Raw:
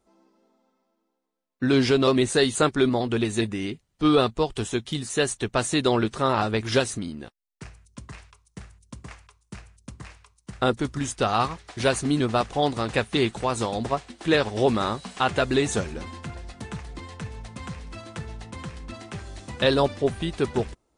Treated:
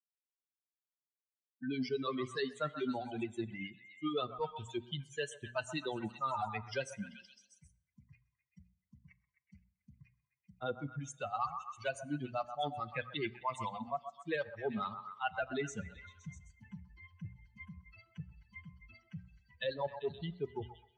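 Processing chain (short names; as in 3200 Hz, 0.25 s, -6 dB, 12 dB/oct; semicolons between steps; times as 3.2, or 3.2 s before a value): per-bin expansion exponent 3; harmonic tremolo 9.4 Hz, depth 70%, crossover 500 Hz; reverse; compressor 5:1, threshold -45 dBFS, peak gain reduction 20 dB; reverse; BPF 120–3900 Hz; low shelf 350 Hz -4 dB; notches 60/120/180/240 Hz; delay with a stepping band-pass 0.129 s, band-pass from 960 Hz, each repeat 0.7 oct, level -8 dB; on a send at -17 dB: reverb RT60 0.85 s, pre-delay 6 ms; on the sum: three-band squash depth 40%; gain +11.5 dB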